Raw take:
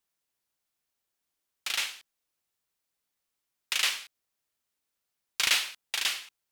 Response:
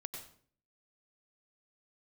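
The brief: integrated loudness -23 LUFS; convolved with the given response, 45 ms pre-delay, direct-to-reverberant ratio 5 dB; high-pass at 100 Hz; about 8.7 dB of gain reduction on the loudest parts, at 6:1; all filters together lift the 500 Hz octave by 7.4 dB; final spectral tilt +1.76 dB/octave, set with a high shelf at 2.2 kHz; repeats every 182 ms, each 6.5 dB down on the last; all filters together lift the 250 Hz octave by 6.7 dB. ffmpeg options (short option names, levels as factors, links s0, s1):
-filter_complex "[0:a]highpass=100,equalizer=f=250:t=o:g=6,equalizer=f=500:t=o:g=7.5,highshelf=f=2200:g=6,acompressor=threshold=0.0501:ratio=6,aecho=1:1:182|364|546|728|910|1092:0.473|0.222|0.105|0.0491|0.0231|0.0109,asplit=2[s0][s1];[1:a]atrim=start_sample=2205,adelay=45[s2];[s1][s2]afir=irnorm=-1:irlink=0,volume=0.708[s3];[s0][s3]amix=inputs=2:normalize=0,volume=2.24"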